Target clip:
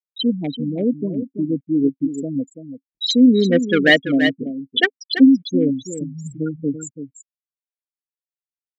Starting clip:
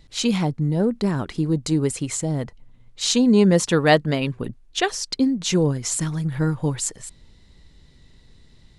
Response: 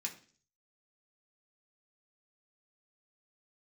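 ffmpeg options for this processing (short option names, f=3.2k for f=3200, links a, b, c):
-filter_complex "[0:a]bandreject=f=2.6k:w=5.4,afftfilt=real='re*gte(hypot(re,im),0.224)':imag='im*gte(hypot(re,im),0.224)':win_size=1024:overlap=0.75,highpass=51,lowshelf=f=440:t=q:w=1.5:g=-13,asplit=2[a][b];[b]acrusher=bits=2:mix=0:aa=0.5,volume=-11dB[c];[a][c]amix=inputs=2:normalize=0,asplit=3[d][e][f];[d]bandpass=f=270:t=q:w=8,volume=0dB[g];[e]bandpass=f=2.29k:t=q:w=8,volume=-6dB[h];[f]bandpass=f=3.01k:t=q:w=8,volume=-9dB[i];[g][h][i]amix=inputs=3:normalize=0,aecho=1:1:335:0.299,alimiter=level_in=27dB:limit=-1dB:release=50:level=0:latency=1,volume=-1dB"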